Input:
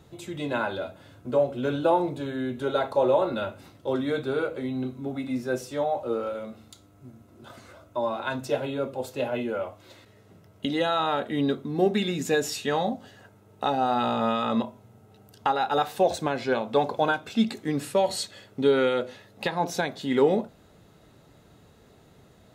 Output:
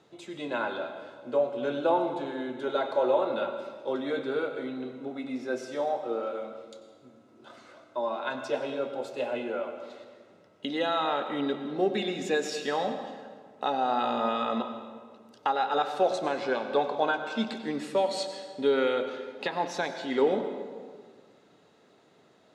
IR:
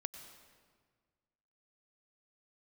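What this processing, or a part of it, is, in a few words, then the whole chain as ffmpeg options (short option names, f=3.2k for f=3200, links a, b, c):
supermarket ceiling speaker: -filter_complex "[0:a]highpass=270,lowpass=6.2k[a];[1:a]atrim=start_sample=2205[b];[a][b]afir=irnorm=-1:irlink=0"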